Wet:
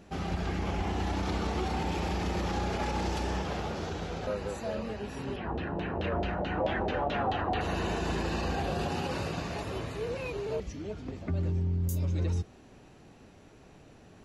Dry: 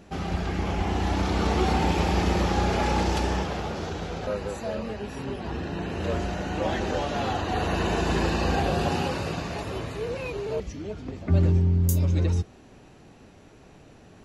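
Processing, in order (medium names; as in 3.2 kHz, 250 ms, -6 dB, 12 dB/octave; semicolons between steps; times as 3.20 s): peak limiter -19.5 dBFS, peak gain reduction 8.5 dB; 5.36–7.61 s: LFO low-pass saw down 4.6 Hz 590–3800 Hz; trim -3.5 dB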